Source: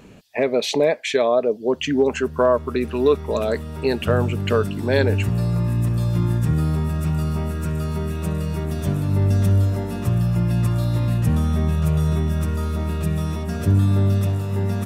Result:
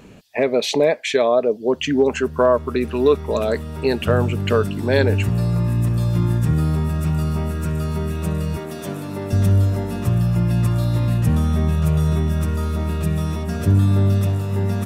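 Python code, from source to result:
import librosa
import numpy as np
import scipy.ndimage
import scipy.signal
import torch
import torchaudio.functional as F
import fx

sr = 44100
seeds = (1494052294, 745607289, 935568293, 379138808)

y = fx.highpass(x, sr, hz=270.0, slope=12, at=(8.57, 9.33))
y = y * librosa.db_to_amplitude(1.5)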